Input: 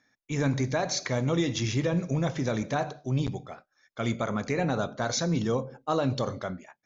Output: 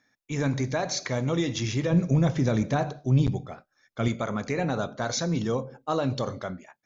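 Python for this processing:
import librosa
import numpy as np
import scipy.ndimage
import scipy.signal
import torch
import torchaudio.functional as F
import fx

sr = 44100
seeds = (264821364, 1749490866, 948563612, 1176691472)

y = fx.low_shelf(x, sr, hz=310.0, db=8.0, at=(1.9, 4.08))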